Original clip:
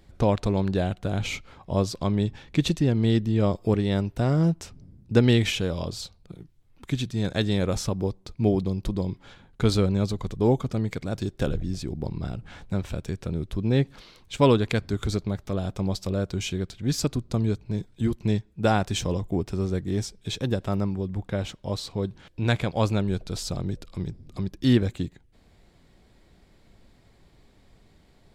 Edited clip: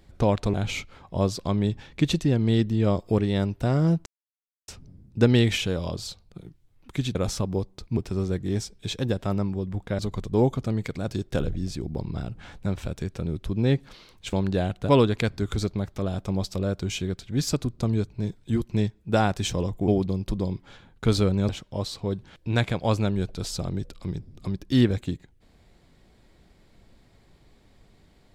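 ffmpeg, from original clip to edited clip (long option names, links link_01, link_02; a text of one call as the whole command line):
ffmpeg -i in.wav -filter_complex "[0:a]asplit=10[link_01][link_02][link_03][link_04][link_05][link_06][link_07][link_08][link_09][link_10];[link_01]atrim=end=0.542[link_11];[link_02]atrim=start=1.098:end=4.62,asetpts=PTS-STARTPTS,afade=type=out:start_time=3.518:duration=0.004:curve=hsin,apad=pad_dur=0.62[link_12];[link_03]atrim=start=4.62:end=7.092,asetpts=PTS-STARTPTS,afade=type=in:duration=0.004:curve=hsin[link_13];[link_04]atrim=start=7.628:end=8.452[link_14];[link_05]atrim=start=19.388:end=21.412[link_15];[link_06]atrim=start=10.058:end=14.402[link_16];[link_07]atrim=start=0.538:end=1.102[link_17];[link_08]atrim=start=14.398:end=19.392[link_18];[link_09]atrim=start=8.448:end=10.062[link_19];[link_10]atrim=start=21.408[link_20];[link_12][link_13]concat=n=2:v=0:a=1[link_21];[link_11][link_21]acrossfade=duration=0.004:curve1=hsin:curve2=hsin[link_22];[link_22][link_14]acrossfade=duration=0.004:curve1=hsin:curve2=hsin[link_23];[link_23][link_15]acrossfade=duration=0.004:curve1=hsin:curve2=hsin[link_24];[link_24][link_16]acrossfade=duration=0.004:curve1=hsin:curve2=hsin[link_25];[link_25][link_17]acrossfade=duration=0.004:curve1=hsin:curve2=hsin[link_26];[link_26][link_18]acrossfade=duration=0.004:curve1=hsin:curve2=hsin[link_27];[link_27][link_19]acrossfade=duration=0.004:curve1=hsin:curve2=hsin[link_28];[link_28][link_20]acrossfade=duration=0.004:curve1=hsin:curve2=hsin" out.wav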